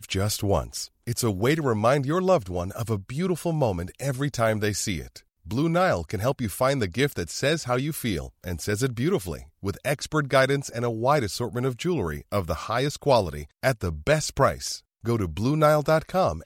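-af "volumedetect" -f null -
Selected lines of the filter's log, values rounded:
mean_volume: -25.1 dB
max_volume: -6.5 dB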